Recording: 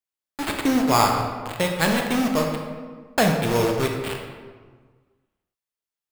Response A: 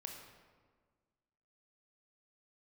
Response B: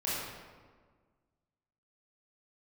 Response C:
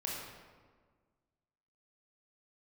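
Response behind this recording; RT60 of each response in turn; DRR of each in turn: A; 1.6, 1.6, 1.6 s; 1.5, -9.0, -4.0 dB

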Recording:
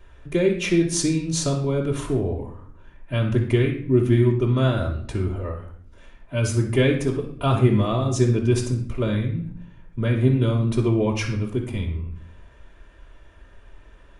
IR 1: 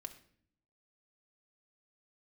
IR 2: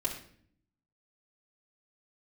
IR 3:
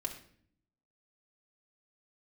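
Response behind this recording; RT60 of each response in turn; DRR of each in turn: 2; 0.55, 0.55, 0.55 s; 4.5, -6.0, -0.5 dB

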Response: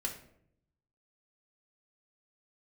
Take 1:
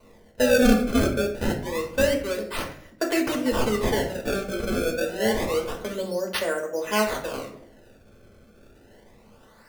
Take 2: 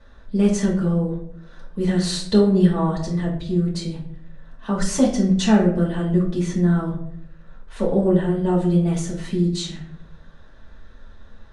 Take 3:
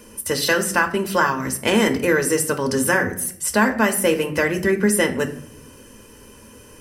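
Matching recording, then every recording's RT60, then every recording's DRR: 1; 0.70, 0.70, 0.70 s; -0.5, -6.0, 6.0 dB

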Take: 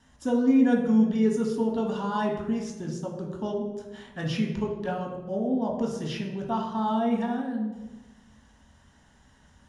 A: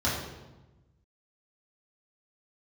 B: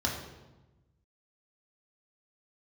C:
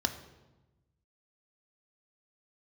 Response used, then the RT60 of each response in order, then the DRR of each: B; 1.1, 1.1, 1.1 s; -8.0, -2.0, 7.0 dB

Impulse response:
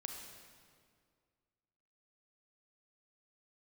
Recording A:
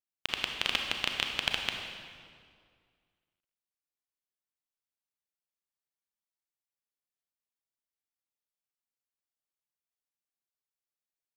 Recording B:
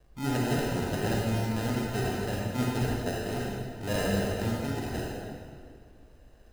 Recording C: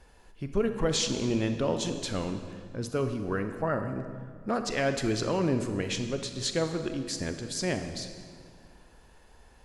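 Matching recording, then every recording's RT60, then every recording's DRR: A; 2.1, 2.1, 2.1 s; 2.5, -4.0, 7.0 dB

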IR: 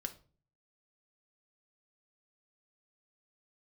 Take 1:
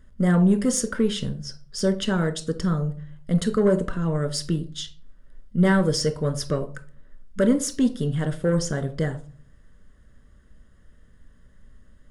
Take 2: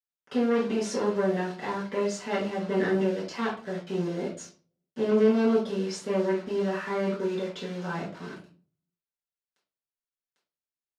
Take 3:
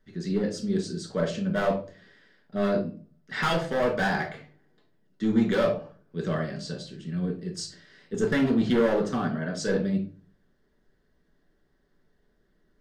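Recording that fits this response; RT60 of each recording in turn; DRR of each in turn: 1; 0.40, 0.40, 0.40 s; 7.0, -8.5, -1.0 dB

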